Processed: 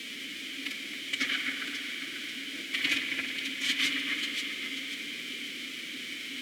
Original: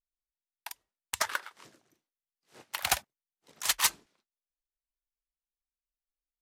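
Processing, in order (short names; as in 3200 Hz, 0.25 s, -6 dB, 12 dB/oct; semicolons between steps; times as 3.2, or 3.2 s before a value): echo with dull and thin repeats by turns 0.269 s, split 2300 Hz, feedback 62%, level -11 dB; in parallel at +2.5 dB: limiter -26.5 dBFS, peak gain reduction 9.5 dB; on the sum: requantised 6-bit, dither triangular; formant-preserving pitch shift +5.5 st; low shelf 190 Hz -11 dB; sample leveller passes 5; vowel filter i; spring tank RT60 4 s, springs 52 ms, chirp 35 ms, DRR 3.5 dB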